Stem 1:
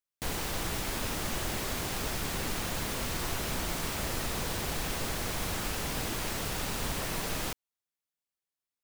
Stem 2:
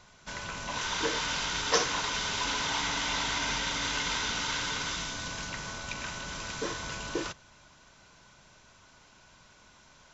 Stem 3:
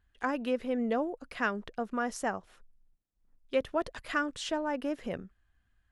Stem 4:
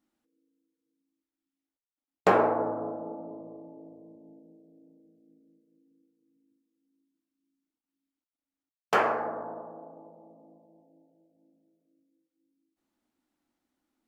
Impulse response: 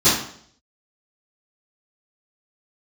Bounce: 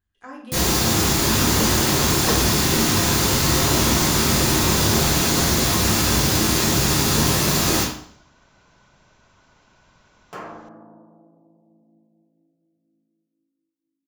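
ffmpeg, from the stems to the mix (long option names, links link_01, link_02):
-filter_complex "[0:a]acrusher=bits=7:mix=0:aa=0.5,adelay=300,volume=-0.5dB,asplit=2[link_01][link_02];[link_02]volume=-8.5dB[link_03];[1:a]lowpass=frequency=1400:poles=1,adelay=550,volume=3dB[link_04];[2:a]volume=-12dB,asplit=2[link_05][link_06];[link_06]volume=-18.5dB[link_07];[3:a]equalizer=frequency=140:width=0.97:gain=11,adelay=1400,volume=-15.5dB,asplit=2[link_08][link_09];[link_09]volume=-21.5dB[link_10];[4:a]atrim=start_sample=2205[link_11];[link_03][link_07][link_10]amix=inputs=3:normalize=0[link_12];[link_12][link_11]afir=irnorm=-1:irlink=0[link_13];[link_01][link_04][link_05][link_08][link_13]amix=inputs=5:normalize=0,highshelf=frequency=5000:gain=8.5"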